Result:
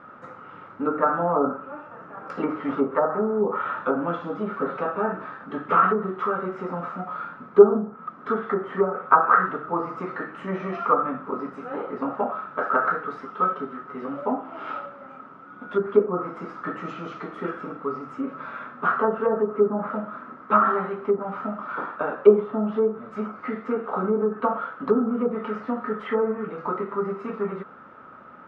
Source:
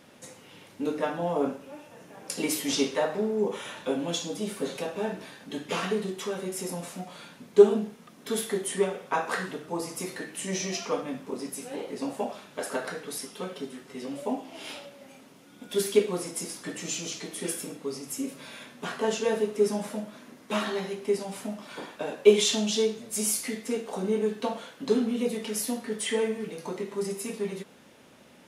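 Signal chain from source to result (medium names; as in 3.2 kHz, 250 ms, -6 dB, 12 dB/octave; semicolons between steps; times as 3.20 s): low-pass that closes with the level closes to 830 Hz, closed at -22 dBFS; resonant low-pass 1.3 kHz, resonance Q 14; trim +3 dB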